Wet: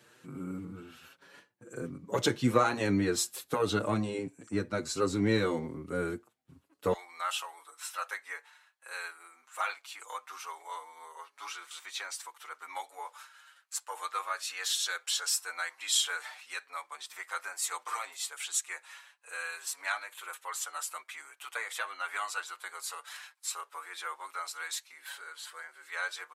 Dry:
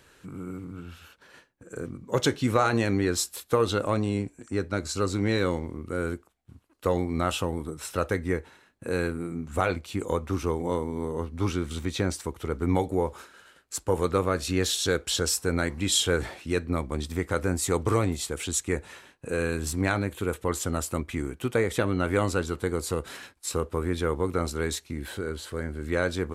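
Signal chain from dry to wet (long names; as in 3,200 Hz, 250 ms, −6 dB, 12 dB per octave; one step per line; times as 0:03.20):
high-pass filter 110 Hz 24 dB per octave, from 0:06.93 900 Hz
barber-pole flanger 6.4 ms +1.3 Hz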